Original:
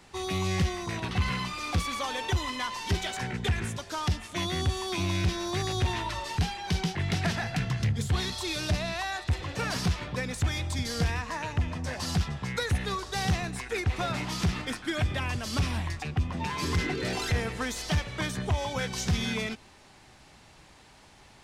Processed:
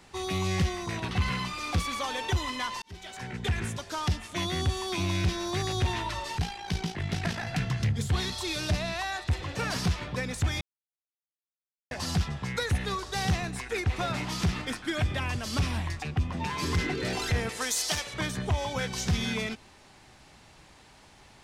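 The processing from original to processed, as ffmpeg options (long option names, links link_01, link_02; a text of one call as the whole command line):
ffmpeg -i in.wav -filter_complex "[0:a]asettb=1/sr,asplit=3[link_01][link_02][link_03];[link_01]atrim=end=6.384[link_04];[link_02]atrim=start=6.38:end=7.47,asetpts=PTS-STARTPTS,afade=type=in:duration=0.004:curve=qsin,afade=type=out:start_time=1.086:duration=0.004:curve=qsin,tremolo=f=56:d=0.621[link_05];[link_03]atrim=start=7.466[link_06];[link_04][link_05]acrossfade=duration=0.004:curve1=hsin:curve2=qsin[link_07];[link_07][link_06]acrossfade=duration=0.004:curve1=qsin:curve2=hsin,asettb=1/sr,asplit=3[link_08][link_09][link_10];[link_08]atrim=end=17.494[link_11];[link_09]atrim=start=17.49:end=18.14,asetpts=PTS-STARTPTS,afade=type=in:duration=0.004:curve=qsin,afade=type=out:start_time=0.646:duration=0.004:curve=qsin,bass=frequency=250:gain=-14,treble=frequency=4000:gain=11[link_12];[link_10]atrim=start=18.136[link_13];[link_11][link_12]acrossfade=duration=0.004:curve1=hsin:curve2=qsin[link_14];[link_14][link_13]acrossfade=duration=0.004:curve1=qsin:curve2=hsin,asplit=4[link_15][link_16][link_17][link_18];[link_15]atrim=end=2.82,asetpts=PTS-STARTPTS,afade=type=out:start_time=2.816:duration=0.004:curve=hsin[link_19];[link_16]atrim=start=2.82:end=10.61,asetpts=PTS-STARTPTS,afade=type=in:duration=0.78,afade=type=out:start_time=7.786:duration=0.004:curve=hsin[link_20];[link_17]atrim=start=10.61:end=11.91,asetpts=PTS-STARTPTS,volume=0[link_21];[link_18]atrim=start=11.91,asetpts=PTS-STARTPTS,afade=type=in:duration=0.004:curve=hsin[link_22];[link_19][link_20][link_21][link_22]concat=n=4:v=0:a=1" out.wav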